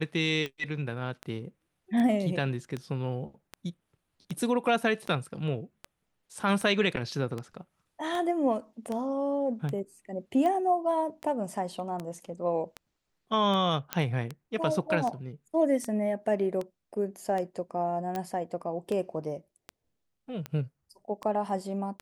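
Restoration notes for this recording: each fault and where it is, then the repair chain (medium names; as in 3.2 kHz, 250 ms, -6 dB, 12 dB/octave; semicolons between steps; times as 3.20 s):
tick 78 rpm -21 dBFS
13.93 s: pop -11 dBFS
18.16 s: pop -20 dBFS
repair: de-click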